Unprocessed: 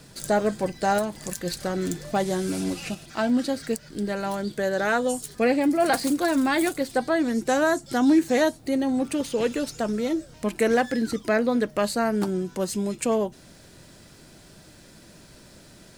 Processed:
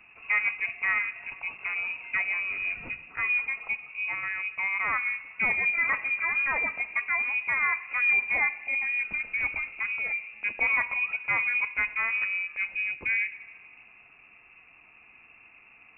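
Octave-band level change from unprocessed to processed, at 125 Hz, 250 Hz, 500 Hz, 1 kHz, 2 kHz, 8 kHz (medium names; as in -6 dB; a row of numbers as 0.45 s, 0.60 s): under -15 dB, -30.5 dB, -25.0 dB, -8.5 dB, +7.5 dB, under -40 dB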